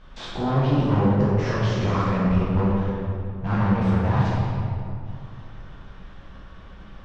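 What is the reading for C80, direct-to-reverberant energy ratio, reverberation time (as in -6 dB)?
-0.5 dB, -7.5 dB, 2.6 s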